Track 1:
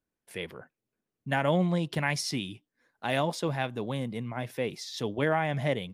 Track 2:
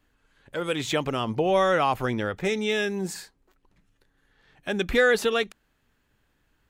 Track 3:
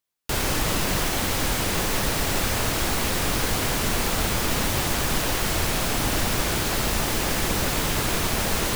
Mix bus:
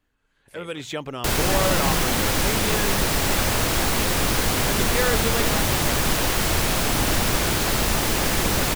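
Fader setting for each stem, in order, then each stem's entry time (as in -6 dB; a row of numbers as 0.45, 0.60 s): -6.0, -4.5, +2.5 dB; 0.20, 0.00, 0.95 s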